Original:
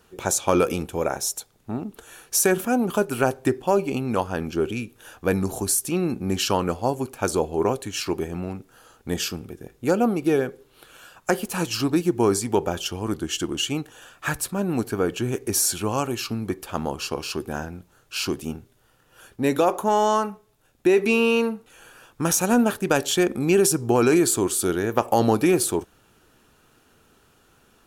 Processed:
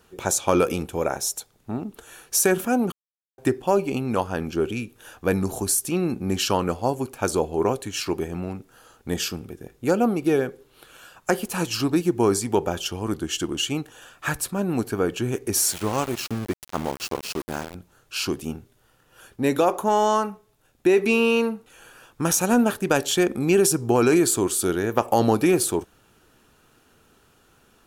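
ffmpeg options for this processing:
-filter_complex "[0:a]asettb=1/sr,asplit=3[a][b][c];[a]atrim=end=15.564[d];[b]atrim=start=15.56:end=17.75,asetpts=PTS-STARTPTS,afade=t=in:d=0.004:c=qsin,afade=t=out:st=2.186:d=0.004:c=qsin,aeval=exprs='val(0)*gte(abs(val(0)),0.0316)':c=same[e];[c]atrim=start=17.746[f];[d][e]acrossfade=d=0.004:c1=hsin:c2=qsin[g];[g][f]acrossfade=d=0.004:c1=qsin:c2=hsin,asplit=3[h][i][j];[h]atrim=end=2.92,asetpts=PTS-STARTPTS,afade=t=out:st=2.916:d=0.004:c=hsin[k];[i]atrim=start=2.92:end=3.38,asetpts=PTS-STARTPTS,volume=0[l];[j]atrim=start=3.38,asetpts=PTS-STARTPTS,afade=t=in:d=0.004:c=hsin[m];[k][l][m]concat=n=3:v=0:a=1"

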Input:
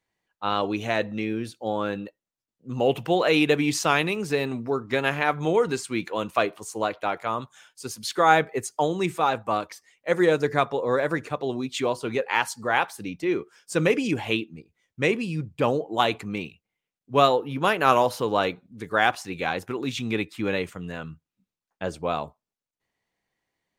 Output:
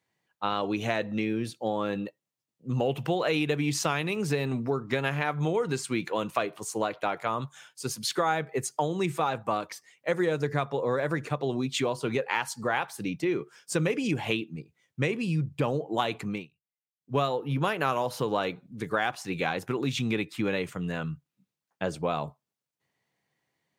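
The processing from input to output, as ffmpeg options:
-filter_complex "[0:a]asettb=1/sr,asplit=3[a][b][c];[a]atrim=end=1.364[d];[b]atrim=start=1.36:end=2.76,asetpts=PTS-STARTPTS,afade=t=in:d=0.004:c=qsin,afade=t=out:st=1.396:d=0.004:c=qsin,bandreject=f=1.5k:w=8.7[e];[c]atrim=start=2.756[f];[d][e]acrossfade=d=0.004:c1=hsin:c2=qsin[g];[g][f]acrossfade=d=0.004:c1=qsin:c2=hsin,asplit=3[h][i][j];[h]atrim=end=16.47,asetpts=PTS-STARTPTS,afade=t=out:st=16.25:d=0.22:silence=0.0668344[k];[i]atrim=start=16.47:end=16.95,asetpts=PTS-STARTPTS,volume=-23.5dB[l];[j]atrim=start=16.95,asetpts=PTS-STARTPTS,afade=t=in:d=0.22:silence=0.0668344[m];[k][l][m]concat=n=3:v=0:a=1,highpass=97,equalizer=f=140:w=3.3:g=8.5,acompressor=threshold=-26dB:ratio=4,volume=1.5dB"

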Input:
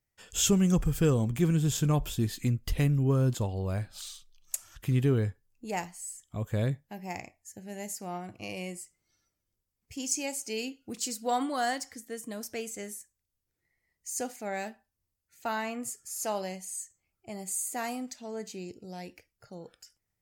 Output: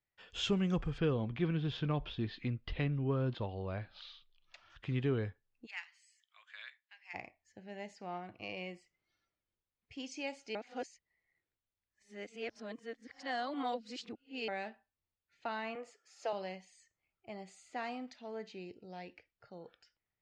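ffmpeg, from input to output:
-filter_complex "[0:a]asettb=1/sr,asplit=3[a][b][c];[a]atrim=end=0.984[d];[b]atrim=start=0.98:end=4.7,asetpts=PTS-STARTPTS,afade=t=in:d=0.004:c=qsin,afade=t=out:st=3.716:d=0.004:c=qsin,lowpass=f=4.8k:w=0.5412,lowpass=f=4.8k:w=1.3066[e];[c]atrim=start=4.696[f];[d][e]acrossfade=d=0.004:c1=hsin:c2=qsin[g];[g][f]acrossfade=d=0.004:c1=qsin:c2=hsin,asplit=3[h][i][j];[h]afade=t=out:st=5.65:d=0.02[k];[i]highpass=f=1.5k:w=0.5412,highpass=f=1.5k:w=1.3066,afade=t=in:st=5.65:d=0.02,afade=t=out:st=7.13:d=0.02[l];[j]afade=t=in:st=7.13:d=0.02[m];[k][l][m]amix=inputs=3:normalize=0,asettb=1/sr,asplit=3[n][o][p];[n]atrim=end=15.754[q];[o]atrim=start=15.75:end=16.33,asetpts=PTS-STARTPTS,afade=t=in:d=0.004:c=qsin,afade=t=out:st=0.576:d=0.004:c=qsin,highpass=f=490:t=q:w=1.9[r];[p]atrim=start=16.326[s];[q][r]acrossfade=d=0.004:c1=hsin:c2=qsin[t];[t][s]acrossfade=d=0.004:c1=qsin:c2=hsin,asplit=3[u][v][w];[u]atrim=end=10.552[x];[v]atrim=start=10.548:end=14.482,asetpts=PTS-STARTPTS,areverse[y];[w]atrim=start=14.478[z];[x][y]acrossfade=d=0.004:c1=hsin:c2=hsin[aa];[aa][z]acrossfade=d=0.004:c1=hsin:c2=hsin,lowpass=f=3.9k:w=0.5412,lowpass=f=3.9k:w=1.3066,lowshelf=f=300:g=-8.5,acrossover=split=490|3000[ab][ac][ad];[ac]acompressor=threshold=-35dB:ratio=6[ae];[ab][ae][ad]amix=inputs=3:normalize=0,volume=-2.5dB"

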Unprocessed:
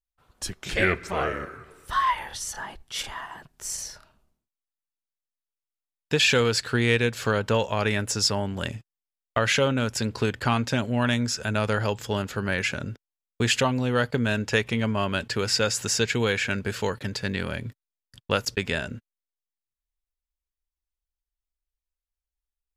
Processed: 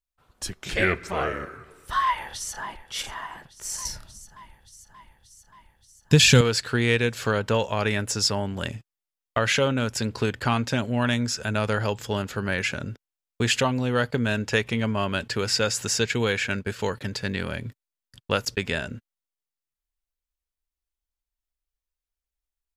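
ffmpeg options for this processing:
-filter_complex "[0:a]asplit=2[a][b];[b]afade=t=in:st=2.04:d=0.01,afade=t=out:st=2.8:d=0.01,aecho=0:1:580|1160|1740|2320|2900|3480|4060|4640|5220:0.188365|0.131855|0.0922988|0.0646092|0.0452264|0.0316585|0.0221609|0.0155127|0.0108589[c];[a][c]amix=inputs=2:normalize=0,asettb=1/sr,asplit=3[d][e][f];[d]atrim=end=3.854[g];[e]atrim=start=3.85:end=6.41,asetpts=PTS-STARTPTS,afade=t=in:d=0.004:c=qsin,afade=t=out:st=2.556:d=0.004:c=qsin,bass=f=250:g=15,treble=f=4k:g=9[h];[f]atrim=start=6.406[i];[g][h]acrossfade=d=0.004:c1=hsin:c2=qsin[j];[j][i]acrossfade=d=0.004:c1=qsin:c2=hsin,asplit=3[k][l][m];[k]afade=t=out:st=15.88:d=0.02[n];[l]agate=range=-33dB:threshold=-29dB:ratio=3:release=100:detection=peak,afade=t=in:st=15.88:d=0.02,afade=t=out:st=16.78:d=0.02[o];[m]afade=t=in:st=16.78:d=0.02[p];[n][o][p]amix=inputs=3:normalize=0"

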